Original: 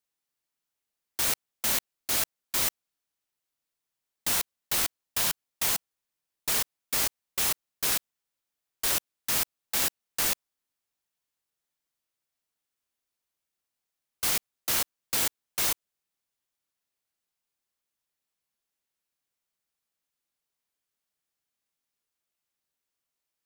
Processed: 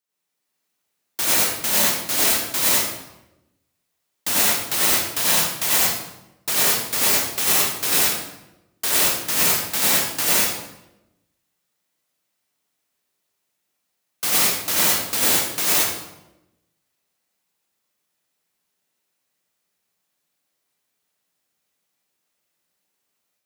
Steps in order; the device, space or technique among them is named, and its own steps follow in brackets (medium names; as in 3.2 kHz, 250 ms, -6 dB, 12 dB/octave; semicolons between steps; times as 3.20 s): far laptop microphone (reverberation RT60 0.95 s, pre-delay 80 ms, DRR -6.5 dB; high-pass 110 Hz 12 dB/octave; level rider gain up to 4 dB)